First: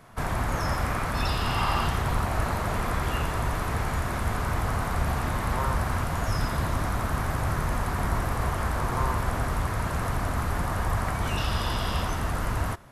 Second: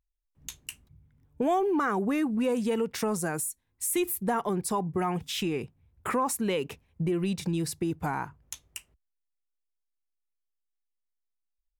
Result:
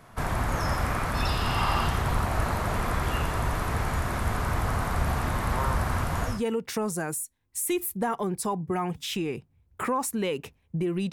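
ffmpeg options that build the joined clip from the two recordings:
-filter_complex "[0:a]apad=whole_dur=11.12,atrim=end=11.12,atrim=end=6.43,asetpts=PTS-STARTPTS[a];[1:a]atrim=start=2.49:end=7.38,asetpts=PTS-STARTPTS[b];[a][b]acrossfade=d=0.2:c1=tri:c2=tri"

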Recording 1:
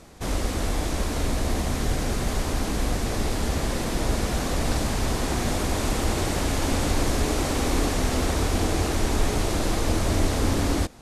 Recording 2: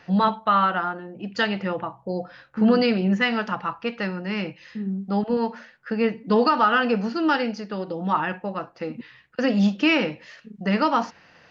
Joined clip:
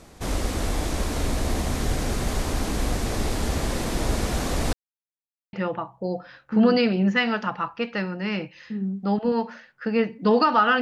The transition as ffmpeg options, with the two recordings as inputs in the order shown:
-filter_complex "[0:a]apad=whole_dur=10.81,atrim=end=10.81,asplit=2[a][b];[a]atrim=end=4.73,asetpts=PTS-STARTPTS,afade=t=out:st=4.726:d=0.004:c=hsin[c];[b]atrim=start=4.73:end=5.53,asetpts=PTS-STARTPTS,volume=0[d];[1:a]atrim=start=1.58:end=6.86,asetpts=PTS-STARTPTS,afade=t=in:d=0.004:c=hsin[e];[c][d][e]concat=n=3:v=0:a=1"

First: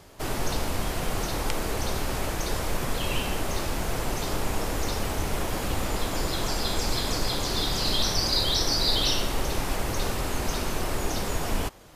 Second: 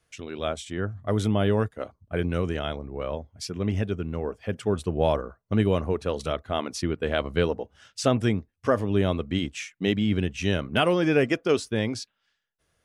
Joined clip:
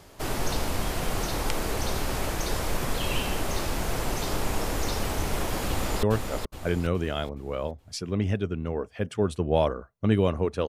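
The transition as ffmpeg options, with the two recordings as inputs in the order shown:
-filter_complex "[0:a]apad=whole_dur=10.68,atrim=end=10.68,atrim=end=6.032[a];[1:a]atrim=start=1.508:end=6.16[b];[a][b]acrossfade=d=0.004:c1=hsin:c2=hsin,asplit=2[c][d];[d]afade=t=in:st=5.68:d=0.01,afade=t=out:st=6.03:d=0.01,aecho=0:1:420|840|1260|1680|2100:0.562341|0.224937|0.0899746|0.0359898|0.0143959[e];[c][e]amix=inputs=2:normalize=0"

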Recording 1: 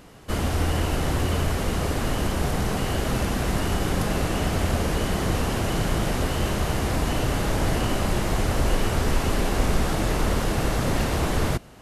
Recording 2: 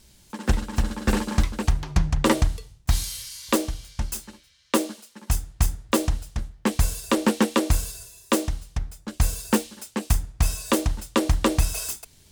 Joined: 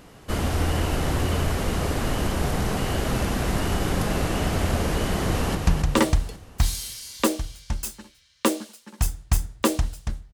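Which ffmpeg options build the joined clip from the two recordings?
-filter_complex "[0:a]apad=whole_dur=10.33,atrim=end=10.33,atrim=end=5.552[a];[1:a]atrim=start=1.838:end=6.62[b];[a][b]acrossfade=d=0.004:c1=hsin:c2=hsin,asplit=2[c][d];[d]afade=t=in:st=5.25:d=0.01,afade=t=out:st=5.55:d=0.01,aecho=0:1:270|540|810|1080|1350|1620:0.530884|0.265442|0.132721|0.0663606|0.0331803|0.0165901[e];[c][e]amix=inputs=2:normalize=0"

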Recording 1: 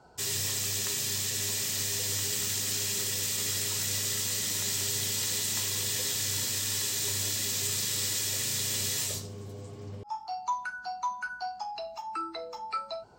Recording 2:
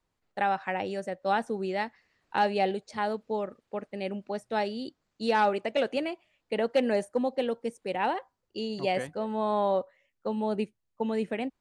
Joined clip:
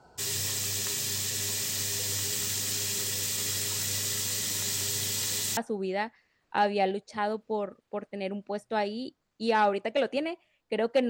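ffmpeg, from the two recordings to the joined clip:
-filter_complex "[0:a]apad=whole_dur=11.09,atrim=end=11.09,atrim=end=5.572[a];[1:a]atrim=start=1.368:end=6.89[b];[a][b]acrossfade=d=0.004:c1=hsin:c2=hsin"

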